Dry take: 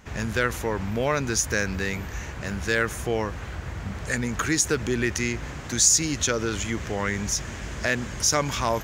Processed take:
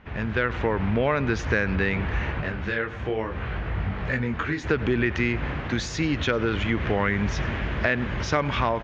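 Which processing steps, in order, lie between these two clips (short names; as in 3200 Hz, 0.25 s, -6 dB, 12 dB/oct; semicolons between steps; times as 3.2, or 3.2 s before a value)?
AGC gain up to 11 dB; LPF 3200 Hz 24 dB/oct; echo 99 ms -20.5 dB; compressor 3:1, threshold -20 dBFS, peak gain reduction 7 dB; 2.4–4.63 detuned doubles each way 29 cents -> 15 cents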